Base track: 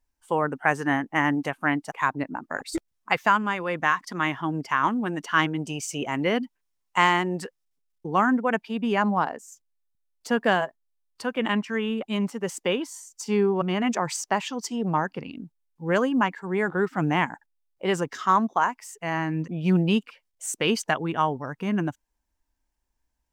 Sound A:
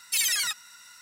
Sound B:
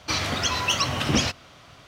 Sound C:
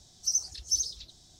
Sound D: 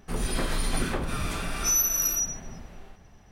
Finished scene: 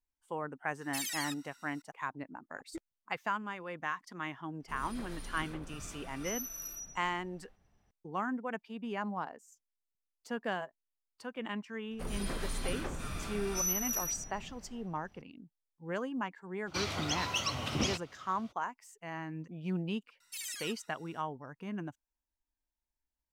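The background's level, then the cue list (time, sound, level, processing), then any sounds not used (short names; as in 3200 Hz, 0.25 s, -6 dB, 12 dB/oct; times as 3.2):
base track -14 dB
0.81 add A -13 dB
4.6 add D -17.5 dB
11.91 add D -9.5 dB
16.66 add B -10 dB, fades 0.02 s + bell 1700 Hz -7 dB 0.23 oct
20.2 add A -17.5 dB + outdoor echo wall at 23 m, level -20 dB
not used: C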